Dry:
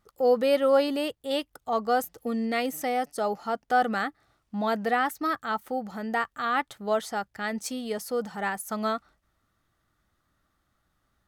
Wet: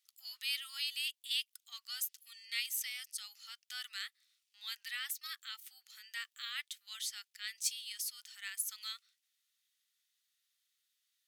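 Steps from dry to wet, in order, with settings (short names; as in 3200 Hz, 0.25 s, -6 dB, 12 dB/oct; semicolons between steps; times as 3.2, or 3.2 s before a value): inverse Chebyshev high-pass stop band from 590 Hz, stop band 70 dB; gain +1.5 dB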